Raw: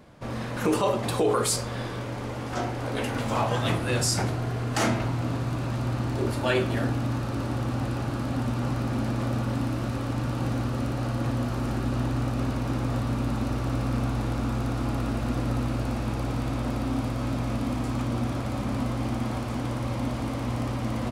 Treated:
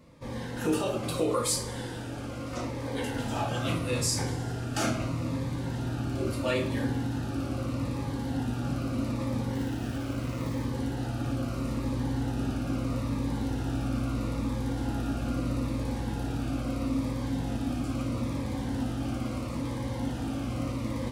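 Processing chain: 9.53–10.64 self-modulated delay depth 0.66 ms; two-slope reverb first 0.27 s, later 2.2 s, from -20 dB, DRR 2 dB; cascading phaser falling 0.77 Hz; gain -4.5 dB

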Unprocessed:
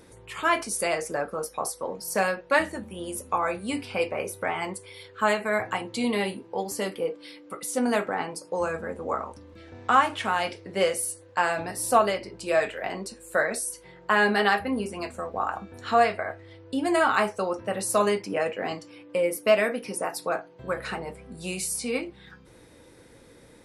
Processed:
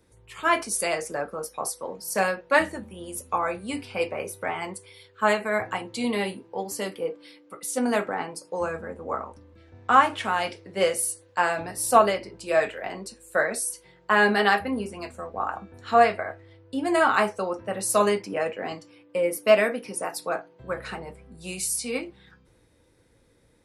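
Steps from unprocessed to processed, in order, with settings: three-band expander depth 40%

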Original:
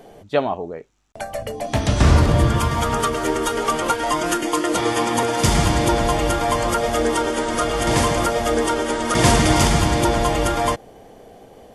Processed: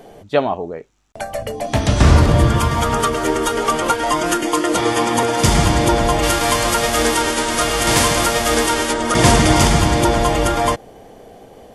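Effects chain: 6.22–8.92 spectral whitening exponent 0.6; gain +3 dB

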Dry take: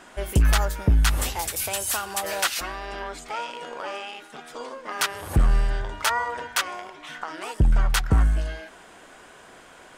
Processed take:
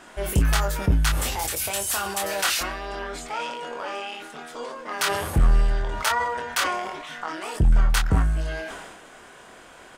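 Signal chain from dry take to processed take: doubler 25 ms -5.5 dB; in parallel at -9 dB: soft clip -26.5 dBFS, distortion -4 dB; on the sum: sustainer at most 38 dB/s; gain -2.5 dB

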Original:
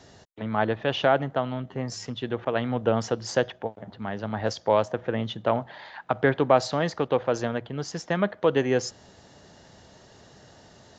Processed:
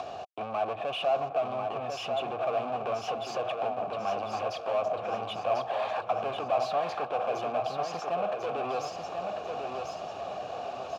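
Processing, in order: bell 72 Hz +9 dB 1.4 oct; in parallel at 0 dB: compressor, threshold -31 dBFS, peak gain reduction 17 dB; on the sum: limiter -15.5 dBFS, peak gain reduction 11 dB; sample leveller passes 5; upward compressor, threshold -24 dBFS; vowel filter a; on a send: feedback echo 1.044 s, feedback 44%, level -5 dB

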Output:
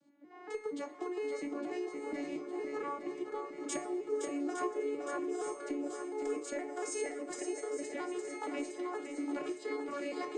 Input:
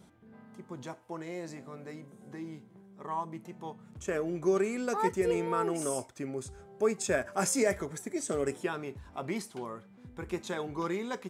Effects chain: arpeggiated vocoder major triad, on C4, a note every 0.256 s; recorder AGC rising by 50 dB/s; high shelf 3800 Hz +8 dB; resonator 140 Hz, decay 0.34 s, harmonics all, mix 80%; in parallel at -12 dB: soft clip -30.5 dBFS, distortion -22 dB; on the sum: swung echo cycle 0.936 s, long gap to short 1.5:1, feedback 53%, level -7 dB; on a send at -21 dB: reverb RT60 0.60 s, pre-delay 0.108 s; on the sum: speed mistake 44.1 kHz file played as 48 kHz

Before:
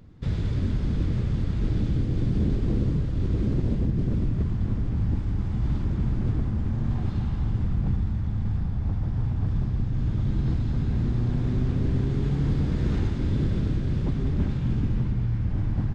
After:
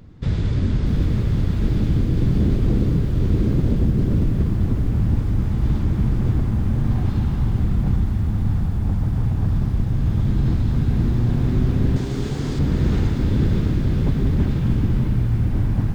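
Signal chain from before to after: 11.96–12.59 tone controls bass -9 dB, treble +11 dB; on a send: tape echo 0.495 s, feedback 79%, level -10 dB, low-pass 4300 Hz; on the sum: lo-fi delay 0.635 s, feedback 35%, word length 8-bit, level -11.5 dB; gain +5.5 dB

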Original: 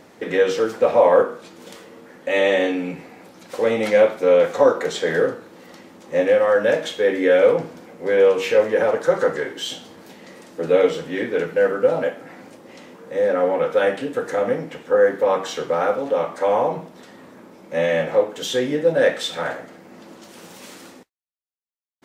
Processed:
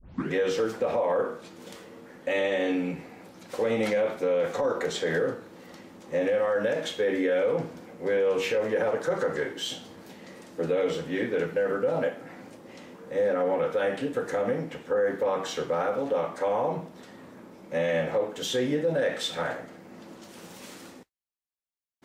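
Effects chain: tape start at the beginning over 0.33 s; limiter -14 dBFS, peak gain reduction 11 dB; low shelf 140 Hz +7.5 dB; gain -4.5 dB

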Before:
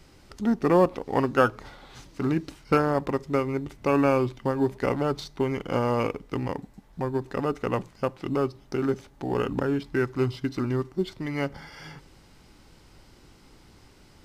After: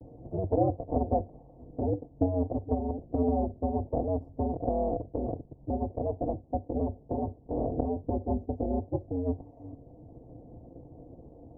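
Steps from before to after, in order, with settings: minimum comb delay 6.2 ms; gate with hold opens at -51 dBFS; on a send at -20.5 dB: reverb, pre-delay 4 ms; on the sum: ring modulator 76 Hz; elliptic low-pass 600 Hz, stop band 50 dB; varispeed +23%; three-band squash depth 40%; gain +2 dB

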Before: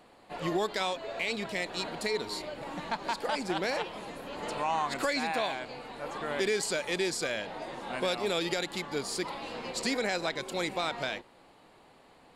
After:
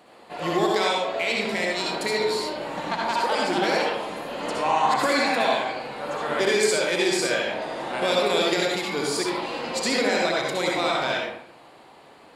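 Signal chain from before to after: HPF 160 Hz 6 dB/oct; reverb RT60 0.70 s, pre-delay 60 ms, DRR -2.5 dB; gain +4.5 dB

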